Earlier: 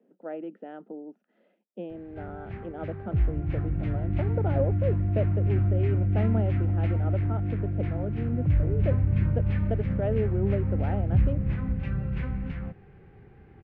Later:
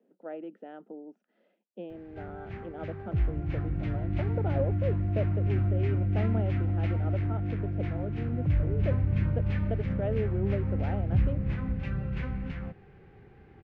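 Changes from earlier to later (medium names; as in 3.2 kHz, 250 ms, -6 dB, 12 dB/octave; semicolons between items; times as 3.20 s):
speech -3.0 dB; master: add tone controls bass -3 dB, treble +8 dB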